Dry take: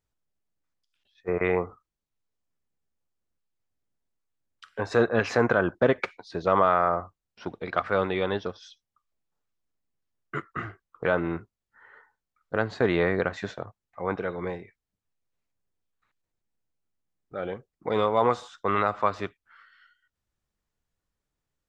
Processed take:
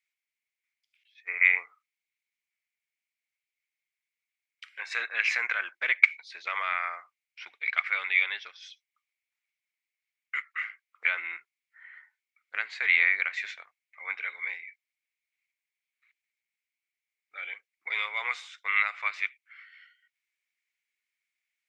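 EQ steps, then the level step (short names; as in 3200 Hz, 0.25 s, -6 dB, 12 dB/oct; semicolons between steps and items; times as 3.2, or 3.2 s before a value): resonant high-pass 2200 Hz, resonance Q 9.2; -2.0 dB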